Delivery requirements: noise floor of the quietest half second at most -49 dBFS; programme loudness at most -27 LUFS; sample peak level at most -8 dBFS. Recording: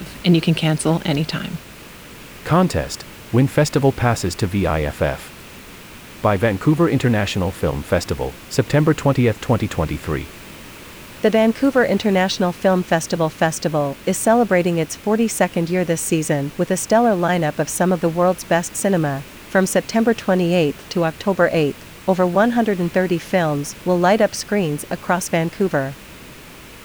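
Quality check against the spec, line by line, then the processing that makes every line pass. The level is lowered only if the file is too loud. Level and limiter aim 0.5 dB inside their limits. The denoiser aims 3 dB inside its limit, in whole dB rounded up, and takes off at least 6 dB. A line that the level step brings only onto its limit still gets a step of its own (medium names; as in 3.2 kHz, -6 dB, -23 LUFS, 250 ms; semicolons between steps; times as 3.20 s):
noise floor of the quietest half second -40 dBFS: fail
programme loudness -19.0 LUFS: fail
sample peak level -4.0 dBFS: fail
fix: noise reduction 6 dB, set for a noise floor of -40 dBFS; trim -8.5 dB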